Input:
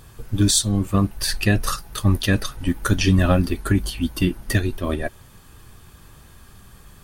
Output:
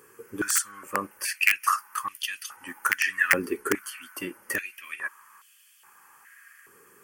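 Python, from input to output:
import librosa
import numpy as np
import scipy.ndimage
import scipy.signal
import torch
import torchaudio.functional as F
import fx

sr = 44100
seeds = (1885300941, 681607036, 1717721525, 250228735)

y = (np.mod(10.0 ** (7.5 / 20.0) * x + 1.0, 2.0) - 1.0) / 10.0 ** (7.5 / 20.0)
y = fx.fixed_phaser(y, sr, hz=1600.0, stages=4)
y = fx.filter_held_highpass(y, sr, hz=2.4, low_hz=440.0, high_hz=3200.0)
y = y * librosa.db_to_amplitude(-2.0)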